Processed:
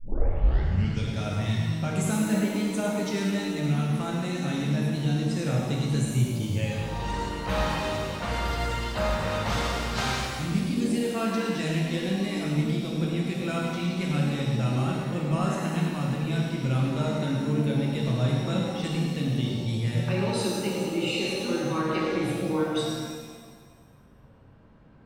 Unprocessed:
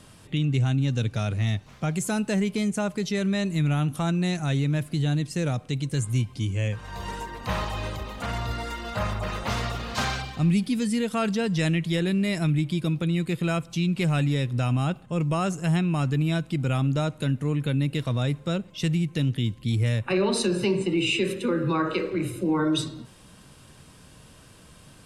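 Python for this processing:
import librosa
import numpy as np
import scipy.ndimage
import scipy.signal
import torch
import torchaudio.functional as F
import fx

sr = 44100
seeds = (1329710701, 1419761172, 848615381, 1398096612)

p1 = fx.tape_start_head(x, sr, length_s=1.09)
p2 = fx.rider(p1, sr, range_db=4, speed_s=0.5)
p3 = fx.env_lowpass(p2, sr, base_hz=1100.0, full_db=-23.0)
p4 = p3 + fx.echo_single(p3, sr, ms=108, db=-7.5, dry=0)
p5 = fx.rev_shimmer(p4, sr, seeds[0], rt60_s=1.5, semitones=7, shimmer_db=-8, drr_db=-2.0)
y = F.gain(torch.from_numpy(p5), -6.5).numpy()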